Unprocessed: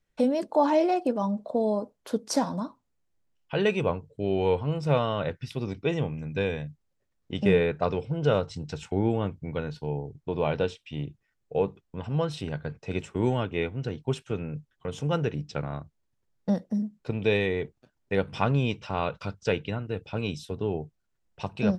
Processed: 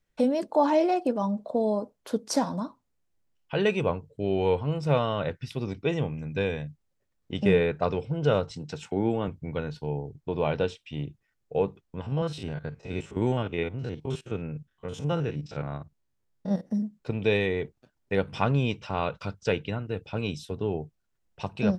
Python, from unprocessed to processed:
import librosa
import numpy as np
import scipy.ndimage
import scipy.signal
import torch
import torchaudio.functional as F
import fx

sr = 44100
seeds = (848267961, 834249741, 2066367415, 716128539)

y = fx.highpass(x, sr, hz=130.0, slope=12, at=(8.51, 9.28))
y = fx.spec_steps(y, sr, hold_ms=50, at=(12.01, 16.69), fade=0.02)